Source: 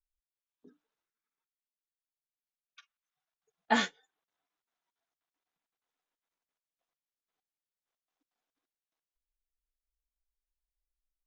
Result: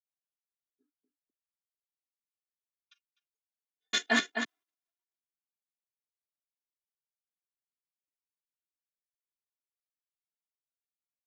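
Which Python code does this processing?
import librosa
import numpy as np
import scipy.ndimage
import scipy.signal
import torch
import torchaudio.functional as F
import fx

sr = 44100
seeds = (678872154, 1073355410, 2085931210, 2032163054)

p1 = fx.block_reorder(x, sr, ms=131.0, group=4)
p2 = fx.peak_eq(p1, sr, hz=780.0, db=-9.0, octaves=2.2)
p3 = p2 + 0.97 * np.pad(p2, (int(2.9 * sr / 1000.0), 0))[:len(p2)]
p4 = p3 + fx.echo_single(p3, sr, ms=254, db=-8.0, dry=0)
p5 = 10.0 ** (-18.5 / 20.0) * np.tanh(p4 / 10.0 ** (-18.5 / 20.0))
p6 = fx.level_steps(p5, sr, step_db=18)
p7 = p5 + (p6 * 10.0 ** (2.5 / 20.0))
p8 = scipy.signal.sosfilt(scipy.signal.butter(2, 220.0, 'highpass', fs=sr, output='sos'), p7)
p9 = fx.band_widen(p8, sr, depth_pct=70)
y = p9 * 10.0 ** (-4.5 / 20.0)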